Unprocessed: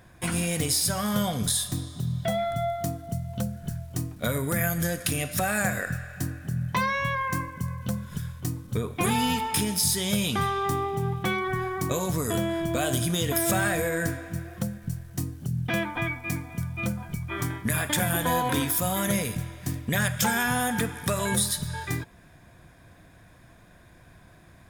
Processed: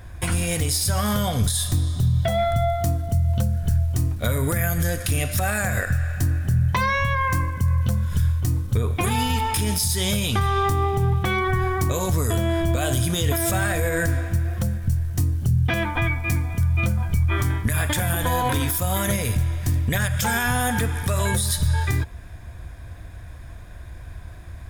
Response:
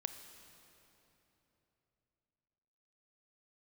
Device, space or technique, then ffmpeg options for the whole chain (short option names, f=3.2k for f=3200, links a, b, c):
car stereo with a boomy subwoofer: -af "lowshelf=f=110:t=q:w=1.5:g=12.5,alimiter=limit=-19dB:level=0:latency=1:release=120,volume=6.5dB"